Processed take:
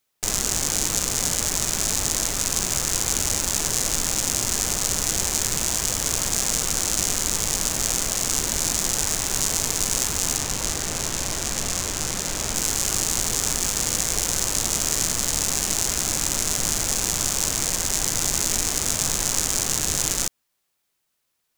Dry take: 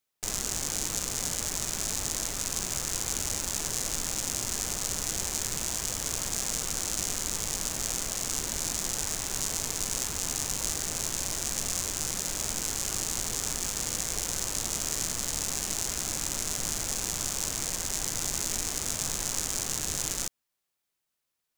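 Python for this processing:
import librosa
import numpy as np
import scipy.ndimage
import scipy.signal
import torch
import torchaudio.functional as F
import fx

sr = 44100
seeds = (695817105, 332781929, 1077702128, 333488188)

y = fx.high_shelf(x, sr, hz=6100.0, db=-6.5, at=(10.37, 12.55))
y = F.gain(torch.from_numpy(y), 8.0).numpy()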